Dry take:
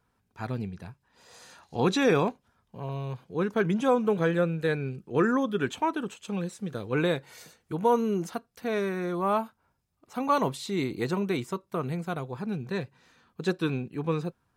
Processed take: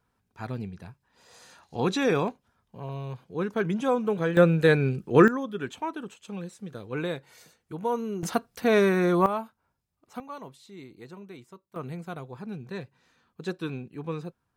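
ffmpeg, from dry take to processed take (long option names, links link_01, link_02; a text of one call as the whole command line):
ffmpeg -i in.wav -af "asetnsamples=nb_out_samples=441:pad=0,asendcmd='4.37 volume volume 7.5dB;5.28 volume volume -5dB;8.23 volume volume 8dB;9.26 volume volume -4dB;10.2 volume volume -16dB;11.76 volume volume -5dB',volume=-1.5dB" out.wav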